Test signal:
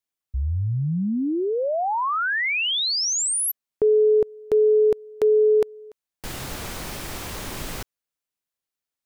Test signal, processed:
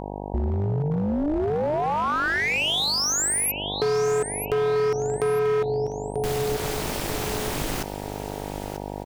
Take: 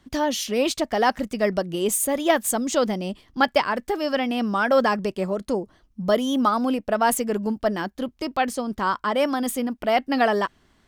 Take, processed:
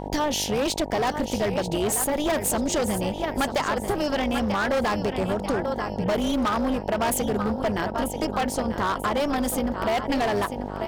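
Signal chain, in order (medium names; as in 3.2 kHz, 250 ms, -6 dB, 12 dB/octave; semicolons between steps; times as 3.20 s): AM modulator 300 Hz, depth 70%; on a send: feedback delay 939 ms, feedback 33%, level -12 dB; on the sum: mains buzz 50 Hz, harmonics 19, -41 dBFS -1 dB/octave; hard clipper -22.5 dBFS; compression 4:1, threshold -29 dBFS; trim +7.5 dB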